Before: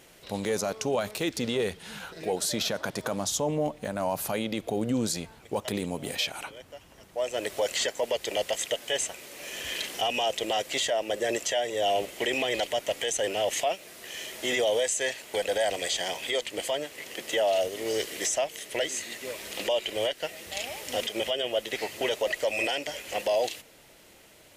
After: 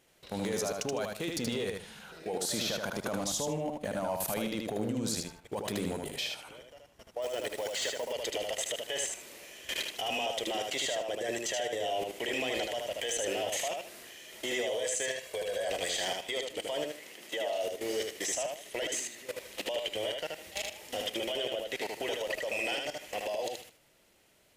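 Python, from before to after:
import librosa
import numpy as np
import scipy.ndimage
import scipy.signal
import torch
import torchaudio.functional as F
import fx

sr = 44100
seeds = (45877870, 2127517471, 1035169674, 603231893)

y = fx.comb(x, sr, ms=1.8, depth=0.67, at=(15.07, 15.68))
y = fx.bessel_highpass(y, sr, hz=160.0, order=2, at=(16.91, 17.68))
y = fx.level_steps(y, sr, step_db=17)
y = np.clip(y, -10.0 ** (-26.0 / 20.0), 10.0 ** (-26.0 / 20.0))
y = fx.echo_feedback(y, sr, ms=77, feedback_pct=24, wet_db=-3.5)
y = fx.quant_float(y, sr, bits=2, at=(7.22, 8.13))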